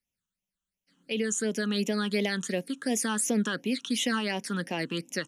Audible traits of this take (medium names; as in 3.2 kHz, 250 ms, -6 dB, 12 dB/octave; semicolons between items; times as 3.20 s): phasing stages 8, 2.8 Hz, lowest notch 620–1400 Hz